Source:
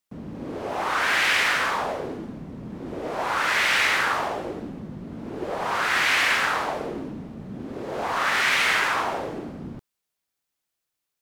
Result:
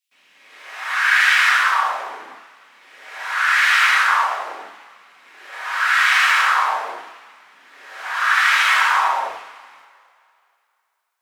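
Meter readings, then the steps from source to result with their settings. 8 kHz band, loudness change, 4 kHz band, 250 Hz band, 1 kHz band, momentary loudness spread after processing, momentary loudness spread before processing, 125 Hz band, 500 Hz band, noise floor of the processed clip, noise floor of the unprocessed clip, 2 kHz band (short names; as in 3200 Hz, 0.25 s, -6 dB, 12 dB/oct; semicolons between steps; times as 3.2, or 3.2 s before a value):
+3.0 dB, +7.0 dB, +3.5 dB, under -20 dB, +6.5 dB, 18 LU, 18 LU, under -30 dB, -7.5 dB, -69 dBFS, -83 dBFS, +7.0 dB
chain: LFO high-pass saw down 0.43 Hz 870–2700 Hz; two-slope reverb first 0.61 s, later 2.6 s, from -21 dB, DRR -5.5 dB; gain -4.5 dB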